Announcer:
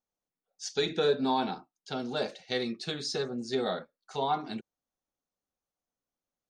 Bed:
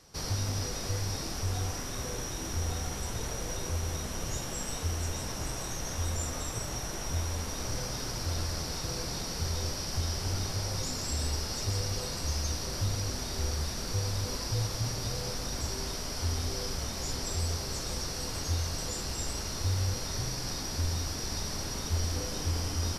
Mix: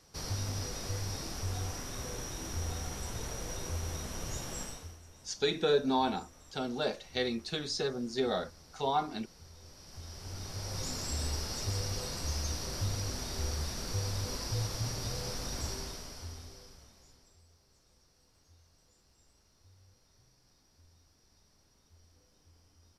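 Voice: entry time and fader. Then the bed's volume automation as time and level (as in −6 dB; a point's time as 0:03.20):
4.65 s, −1.0 dB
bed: 0:04.62 −4 dB
0:05.02 −21.5 dB
0:09.58 −21.5 dB
0:10.87 −3 dB
0:15.69 −3 dB
0:17.44 −32.5 dB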